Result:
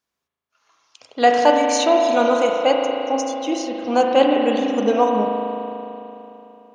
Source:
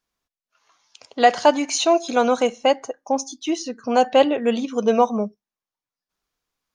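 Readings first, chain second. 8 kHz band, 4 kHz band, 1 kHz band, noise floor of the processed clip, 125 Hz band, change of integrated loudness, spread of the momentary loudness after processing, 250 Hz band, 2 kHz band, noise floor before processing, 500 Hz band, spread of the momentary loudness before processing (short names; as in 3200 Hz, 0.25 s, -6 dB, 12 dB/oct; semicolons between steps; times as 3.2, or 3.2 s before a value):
-1.0 dB, +0.5 dB, +2.0 dB, -83 dBFS, n/a, +1.5 dB, 14 LU, +2.0 dB, +1.5 dB, under -85 dBFS, +2.5 dB, 10 LU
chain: HPF 80 Hz; spring tank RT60 3.2 s, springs 37 ms, chirp 80 ms, DRR 0.5 dB; gain -1 dB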